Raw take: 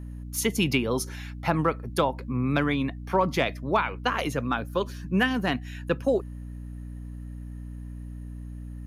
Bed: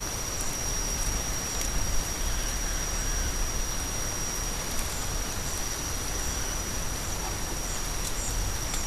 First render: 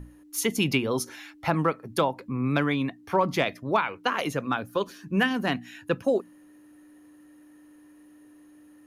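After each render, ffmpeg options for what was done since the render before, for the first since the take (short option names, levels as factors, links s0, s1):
-af "bandreject=f=60:t=h:w=6,bandreject=f=120:t=h:w=6,bandreject=f=180:t=h:w=6,bandreject=f=240:t=h:w=6"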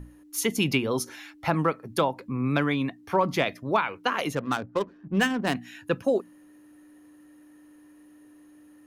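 -filter_complex "[0:a]asettb=1/sr,asplit=3[s0][s1][s2];[s0]atrim=end=4.354[s3];[s1]atrim=start=4.35:end=5.55,asetpts=PTS-STARTPTS,afade=t=in:d=0.004:c=qsin,afade=t=out:st=1.196:d=0.004:c=qsin,adynamicsmooth=sensitivity=4.5:basefreq=590[s4];[s2]atrim=start=5.546[s5];[s3][s4]acrossfade=d=0.004:c1=hsin:c2=qsin[s6];[s6][s5]acrossfade=d=0.004:c1=qsin:c2=hsin"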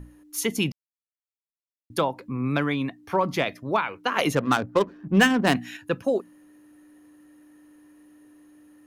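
-filter_complex "[0:a]asettb=1/sr,asplit=3[s0][s1][s2];[s0]atrim=end=4.164[s3];[s1]atrim=start=4.16:end=5.77,asetpts=PTS-STARTPTS,afade=t=in:d=0.004:c=qsin,afade=t=out:st=1.606:d=0.004:c=qsin,acontrast=50[s4];[s2]atrim=start=5.766[s5];[s3][s4]acrossfade=d=0.004:c1=hsin:c2=qsin[s6];[s6][s5]acrossfade=d=0.004:c1=qsin:c2=hsin,asplit=3[s7][s8][s9];[s7]atrim=end=0.72,asetpts=PTS-STARTPTS,afade=t=out:st=0.716:d=0.004:c=hsin[s10];[s8]atrim=start=0.72:end=1.9,asetpts=PTS-STARTPTS,volume=0[s11];[s9]atrim=start=1.9,asetpts=PTS-STARTPTS,afade=t=in:d=0.004:c=hsin[s12];[s10][s11][s12]concat=n=3:v=0:a=1"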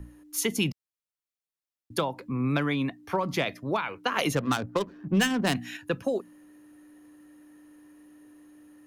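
-filter_complex "[0:a]acrossover=split=150|3000[s0][s1][s2];[s1]acompressor=threshold=0.0631:ratio=6[s3];[s0][s3][s2]amix=inputs=3:normalize=0"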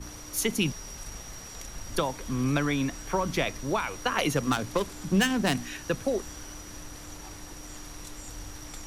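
-filter_complex "[1:a]volume=0.266[s0];[0:a][s0]amix=inputs=2:normalize=0"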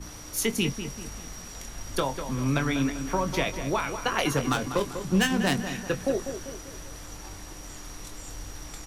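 -filter_complex "[0:a]asplit=2[s0][s1];[s1]adelay=22,volume=0.355[s2];[s0][s2]amix=inputs=2:normalize=0,asplit=2[s3][s4];[s4]adelay=196,lowpass=f=2600:p=1,volume=0.355,asplit=2[s5][s6];[s6]adelay=196,lowpass=f=2600:p=1,volume=0.49,asplit=2[s7][s8];[s8]adelay=196,lowpass=f=2600:p=1,volume=0.49,asplit=2[s9][s10];[s10]adelay=196,lowpass=f=2600:p=1,volume=0.49,asplit=2[s11][s12];[s12]adelay=196,lowpass=f=2600:p=1,volume=0.49,asplit=2[s13][s14];[s14]adelay=196,lowpass=f=2600:p=1,volume=0.49[s15];[s3][s5][s7][s9][s11][s13][s15]amix=inputs=7:normalize=0"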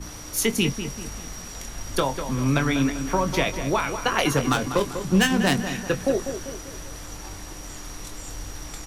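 -af "volume=1.58"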